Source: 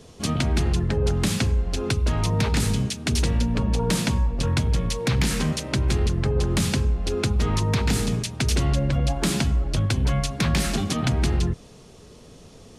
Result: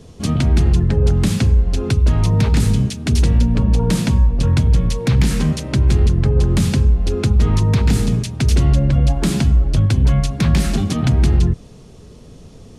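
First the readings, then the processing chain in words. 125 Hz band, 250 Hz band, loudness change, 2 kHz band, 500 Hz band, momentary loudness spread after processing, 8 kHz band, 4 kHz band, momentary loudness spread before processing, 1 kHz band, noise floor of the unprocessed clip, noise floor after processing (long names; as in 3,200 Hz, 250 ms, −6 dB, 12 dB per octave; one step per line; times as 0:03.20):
+8.5 dB, +6.5 dB, +7.5 dB, 0.0 dB, +3.0 dB, 3 LU, 0.0 dB, 0.0 dB, 3 LU, +1.0 dB, −47 dBFS, −41 dBFS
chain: low-shelf EQ 310 Hz +9.5 dB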